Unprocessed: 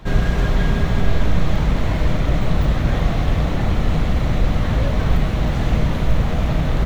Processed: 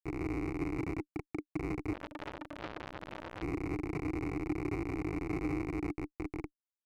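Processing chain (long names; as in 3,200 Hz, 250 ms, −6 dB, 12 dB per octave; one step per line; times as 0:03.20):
fade-out on the ending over 1.15 s
comparator with hysteresis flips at −18.5 dBFS
formant filter u
phaser with its sweep stopped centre 890 Hz, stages 6
0:01.93–0:03.42: saturating transformer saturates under 2,100 Hz
level +6.5 dB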